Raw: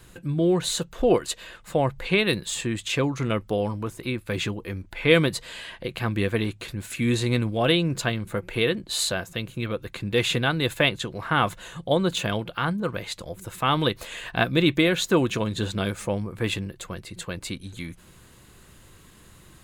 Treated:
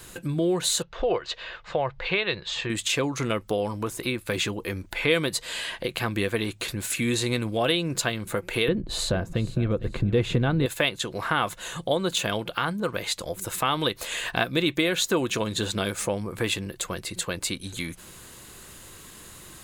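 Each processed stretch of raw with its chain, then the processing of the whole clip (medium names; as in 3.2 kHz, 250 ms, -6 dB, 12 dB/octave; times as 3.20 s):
0.82–2.70 s: Bessel low-pass 3.2 kHz, order 6 + peaking EQ 250 Hz -13 dB 0.88 oct
8.68–10.66 s: tilt EQ -4.5 dB/octave + feedback delay 455 ms, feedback 24%, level -16 dB
whole clip: tone controls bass -6 dB, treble +5 dB; compression 2:1, threshold -33 dBFS; trim +6 dB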